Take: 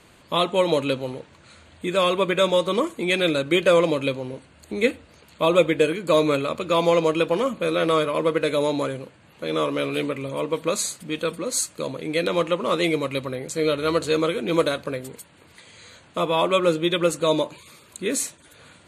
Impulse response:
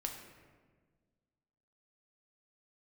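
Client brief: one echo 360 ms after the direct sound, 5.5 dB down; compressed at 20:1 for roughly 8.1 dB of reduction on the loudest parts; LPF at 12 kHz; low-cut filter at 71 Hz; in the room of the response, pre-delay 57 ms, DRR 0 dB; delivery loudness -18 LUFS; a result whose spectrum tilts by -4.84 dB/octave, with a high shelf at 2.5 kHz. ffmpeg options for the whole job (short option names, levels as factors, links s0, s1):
-filter_complex "[0:a]highpass=71,lowpass=12000,highshelf=f=2500:g=-8.5,acompressor=threshold=0.0891:ratio=20,aecho=1:1:360:0.531,asplit=2[s0][s1];[1:a]atrim=start_sample=2205,adelay=57[s2];[s1][s2]afir=irnorm=-1:irlink=0,volume=1.06[s3];[s0][s3]amix=inputs=2:normalize=0,volume=1.88"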